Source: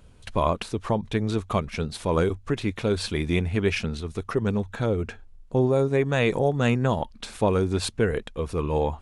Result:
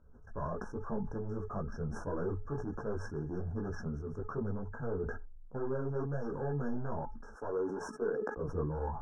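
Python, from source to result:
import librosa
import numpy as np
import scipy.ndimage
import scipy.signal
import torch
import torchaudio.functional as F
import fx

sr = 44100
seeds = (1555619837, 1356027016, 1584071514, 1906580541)

y = fx.highpass(x, sr, hz=240.0, slope=24, at=(7.34, 8.37))
y = np.clip(10.0 ** (22.5 / 20.0) * y, -1.0, 1.0) / 10.0 ** (22.5 / 20.0)
y = fx.comb_fb(y, sr, f0_hz=430.0, decay_s=0.21, harmonics='all', damping=0.0, mix_pct=60)
y = fx.chorus_voices(y, sr, voices=6, hz=1.0, base_ms=17, depth_ms=4.5, mix_pct=50)
y = fx.brickwall_bandstop(y, sr, low_hz=1700.0, high_hz=5300.0)
y = fx.air_absorb(y, sr, metres=260.0)
y = fx.sustainer(y, sr, db_per_s=43.0)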